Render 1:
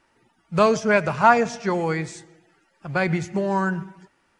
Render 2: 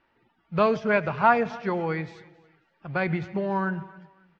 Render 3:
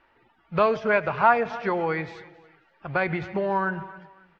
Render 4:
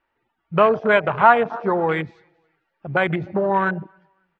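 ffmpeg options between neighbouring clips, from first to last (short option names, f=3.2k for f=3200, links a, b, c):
-af "lowpass=f=3.9k:w=0.5412,lowpass=f=3.9k:w=1.3066,aecho=1:1:271|542:0.0794|0.0246,volume=-4dB"
-filter_complex "[0:a]lowpass=f=3.2k:p=1,equalizer=f=180:w=0.74:g=-8.5,asplit=2[a][b];[b]acompressor=threshold=-32dB:ratio=6,volume=3dB[c];[a][c]amix=inputs=2:normalize=0"
-af "afwtdn=0.0398,volume=5.5dB"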